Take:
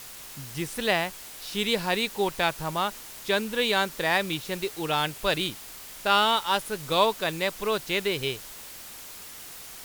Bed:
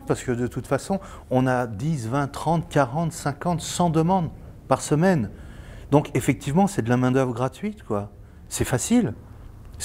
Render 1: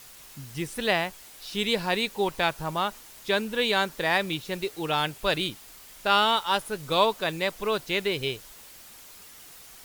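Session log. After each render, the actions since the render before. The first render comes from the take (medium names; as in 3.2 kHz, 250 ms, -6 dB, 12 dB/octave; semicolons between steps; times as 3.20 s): noise reduction 6 dB, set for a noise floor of -43 dBFS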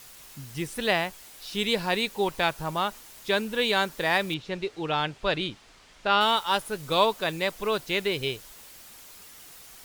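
4.34–6.21 s: distance through air 110 m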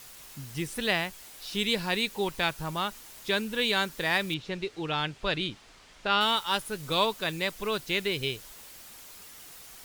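dynamic bell 680 Hz, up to -6 dB, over -37 dBFS, Q 0.74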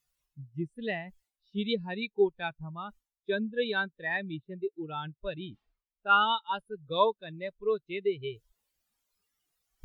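reverse; upward compressor, threshold -29 dBFS; reverse; spectral contrast expander 2.5:1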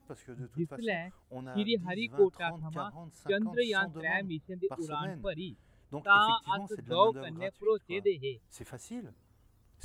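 add bed -23 dB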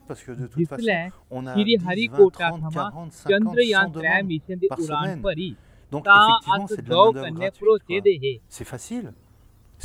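trim +11.5 dB; peak limiter -3 dBFS, peak gain reduction 2.5 dB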